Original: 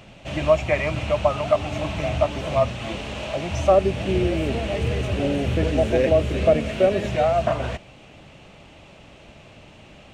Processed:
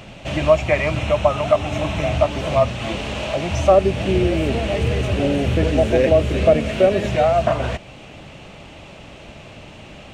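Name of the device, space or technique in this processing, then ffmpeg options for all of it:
parallel compression: -filter_complex "[0:a]asettb=1/sr,asplit=3[link_01][link_02][link_03];[link_01]atrim=end=0.974[link_04];[link_02]atrim=start=0.97:end=2.1,asetpts=PTS-STARTPTS,afade=type=in:duration=0.004:curve=qsin,afade=type=out:start_time=1.126:duration=0.004:curve=qsin,bandreject=frequency=4600:width=9.3[link_05];[link_03]atrim=start=2.096[link_06];[link_04][link_05]acrossfade=duration=0.004:curve1=hsin:curve2=qsin[link_07];[link_07][link_06]acrossfade=duration=0.004:curve1=qsin:curve2=hsin,asplit=2[link_08][link_09];[link_09]acompressor=threshold=-33dB:ratio=6,volume=-3.5dB[link_10];[link_08][link_10]amix=inputs=2:normalize=0,volume=2.5dB"

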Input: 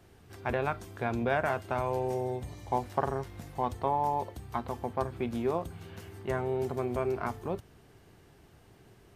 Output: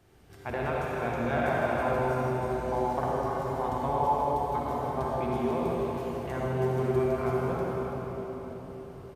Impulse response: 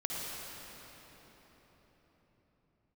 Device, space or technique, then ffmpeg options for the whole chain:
cave: -filter_complex "[0:a]aecho=1:1:333:0.355[link_01];[1:a]atrim=start_sample=2205[link_02];[link_01][link_02]afir=irnorm=-1:irlink=0,volume=-2dB"

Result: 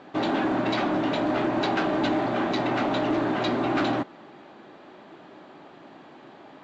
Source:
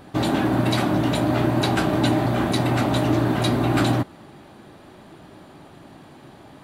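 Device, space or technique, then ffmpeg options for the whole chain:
telephone: -af "highpass=270,lowpass=3500,asoftclip=type=tanh:threshold=-17dB" -ar 16000 -c:a pcm_mulaw

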